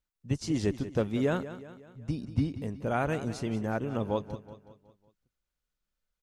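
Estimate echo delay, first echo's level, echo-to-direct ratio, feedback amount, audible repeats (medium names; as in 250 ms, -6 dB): 185 ms, -13.5 dB, -12.5 dB, 49%, 4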